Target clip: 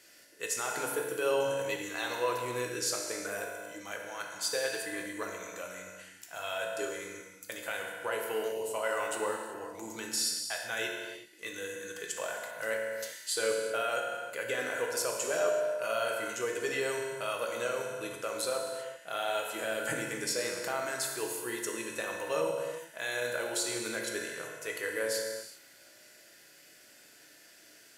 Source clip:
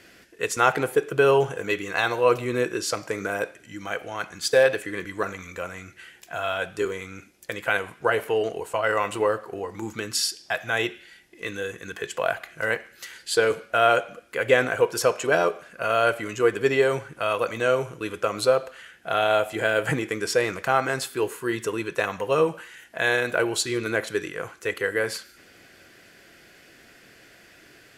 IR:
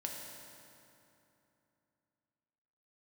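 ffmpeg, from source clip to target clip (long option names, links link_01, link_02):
-filter_complex "[0:a]bass=frequency=250:gain=-9,treble=frequency=4000:gain=12,alimiter=limit=-11.5dB:level=0:latency=1[link_01];[1:a]atrim=start_sample=2205,afade=type=out:start_time=0.44:duration=0.01,atrim=end_sample=19845[link_02];[link_01][link_02]afir=irnorm=-1:irlink=0,volume=-8dB"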